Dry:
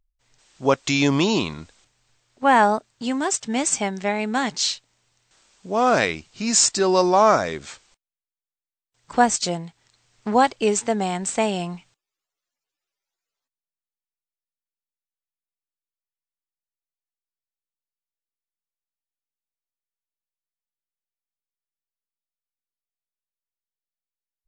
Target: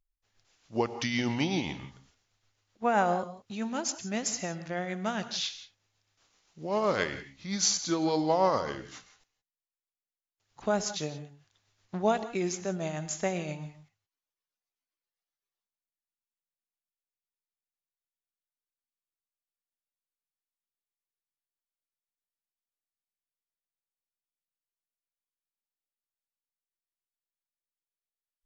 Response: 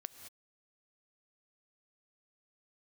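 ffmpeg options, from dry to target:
-filter_complex "[0:a]asetrate=37926,aresample=44100,tremolo=f=7.7:d=0.4[a];[1:a]atrim=start_sample=2205,afade=t=out:st=0.23:d=0.01,atrim=end_sample=10584[b];[a][b]afir=irnorm=-1:irlink=0,volume=-3.5dB"

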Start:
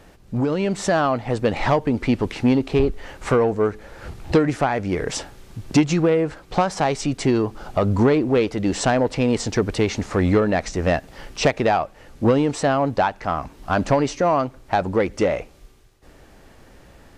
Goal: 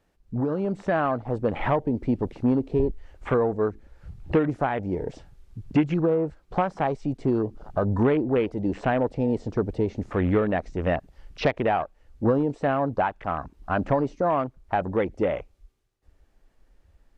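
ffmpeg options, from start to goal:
-filter_complex "[0:a]afwtdn=0.0355,acrossover=split=4500[a][b];[b]acompressor=threshold=-57dB:ratio=4:attack=1:release=60[c];[a][c]amix=inputs=2:normalize=0,volume=-4.5dB"

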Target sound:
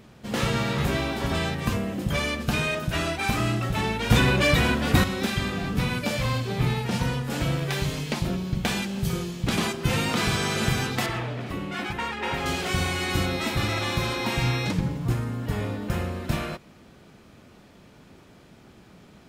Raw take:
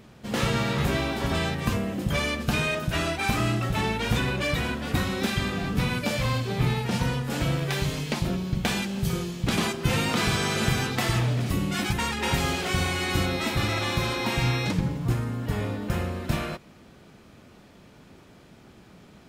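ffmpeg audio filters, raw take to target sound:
-filter_complex "[0:a]asettb=1/sr,asplit=3[a][b][c];[a]atrim=end=4.104[d];[b]atrim=start=4.1:end=5.04,asetpts=PTS-STARTPTS,afade=t=in:d=0.004:c=qsin,afade=t=out:st=0.936:d=0.004:c=qsin,acontrast=62[e];[c]atrim=start=5.036[f];[d][e]acrossfade=d=0.004:c1=hsin:c2=qsin[g];[g][f]acrossfade=d=0.004:c1=qsin:c2=hsin,asettb=1/sr,asplit=3[h][i][j];[h]atrim=end=11.064[k];[i]atrim=start=11.06:end=12.46,asetpts=PTS-STARTPTS,afade=t=in:d=0.004:c=qsin,afade=t=out:st=1.396:d=0.004:c=qsin,bass=f=250:g=-9,treble=f=4k:g=-14[l];[j]atrim=start=12.456[m];[k][l]acrossfade=d=0.004:c1=hsin:c2=qsin[n];[n][m]acrossfade=d=0.004:c1=qsin:c2=hsin"

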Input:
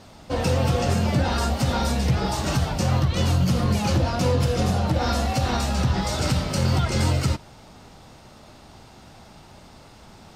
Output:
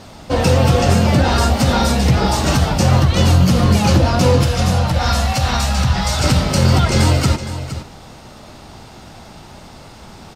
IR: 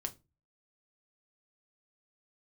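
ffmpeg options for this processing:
-filter_complex "[0:a]asettb=1/sr,asplit=3[a][b][c];[a]atrim=end=4.434[d];[b]atrim=start=4.43:end=6.24,asetpts=PTS-STARTPTS,afade=t=in:d=0.004:c=qsin,afade=t=out:st=1.806:d=0.004:c=qsin,equalizer=f=340:t=o:w=1.3:g=-12.5[e];[c]atrim=start=6.236[f];[d][e]acrossfade=d=0.004:c1=hsin:c2=qsin[g];[g][f]acrossfade=d=0.004:c1=qsin:c2=hsin,aecho=1:1:465:0.237,volume=8.5dB"

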